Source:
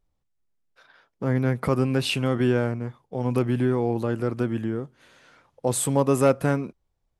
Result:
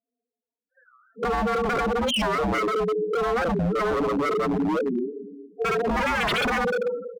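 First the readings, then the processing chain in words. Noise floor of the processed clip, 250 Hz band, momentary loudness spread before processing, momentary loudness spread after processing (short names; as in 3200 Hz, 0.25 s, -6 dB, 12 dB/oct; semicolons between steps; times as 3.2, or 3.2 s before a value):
under -85 dBFS, -2.0 dB, 11 LU, 5 LU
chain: spectral trails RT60 0.69 s; mistuned SSB -53 Hz 280–3400 Hz; pre-echo 62 ms -18 dB; sample leveller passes 2; air absorption 89 m; comb 4.4 ms, depth 98%; Schroeder reverb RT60 1.5 s, combs from 25 ms, DRR 2 dB; loudest bins only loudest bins 4; in parallel at +2 dB: compressor 12:1, threshold -26 dBFS, peak gain reduction 20.5 dB; on the sum: dynamic EQ 470 Hz, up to +4 dB, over -26 dBFS, Q 2.3; wavefolder -13.5 dBFS; record warp 45 rpm, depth 250 cents; gain -5.5 dB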